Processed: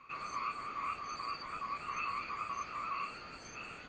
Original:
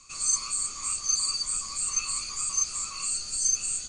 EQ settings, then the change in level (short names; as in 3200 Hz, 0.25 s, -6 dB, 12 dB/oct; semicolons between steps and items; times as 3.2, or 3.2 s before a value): HPF 350 Hz 6 dB/oct; LPF 2200 Hz 24 dB/oct; +6.5 dB